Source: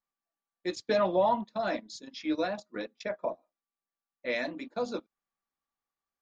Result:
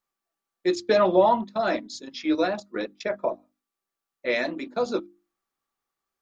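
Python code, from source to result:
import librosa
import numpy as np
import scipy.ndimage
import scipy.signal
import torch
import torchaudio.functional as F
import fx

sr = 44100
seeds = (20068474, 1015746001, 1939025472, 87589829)

y = fx.hum_notches(x, sr, base_hz=50, count=7)
y = fx.small_body(y, sr, hz=(370.0, 1300.0), ring_ms=45, db=7)
y = y * librosa.db_to_amplitude(6.0)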